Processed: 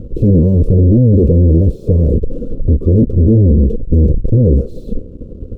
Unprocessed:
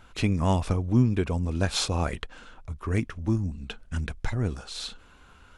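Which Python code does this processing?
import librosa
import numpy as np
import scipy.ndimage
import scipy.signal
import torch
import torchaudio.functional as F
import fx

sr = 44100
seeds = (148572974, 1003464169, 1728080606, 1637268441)

y = fx.fuzz(x, sr, gain_db=48.0, gate_db=-54.0)
y = scipy.signal.sosfilt(scipy.signal.ellip(4, 1.0, 40, 510.0, 'lowpass', fs=sr, output='sos'), y)
y = fx.upward_expand(y, sr, threshold_db=-29.0, expansion=1.5)
y = F.gain(torch.from_numpy(y), 7.5).numpy()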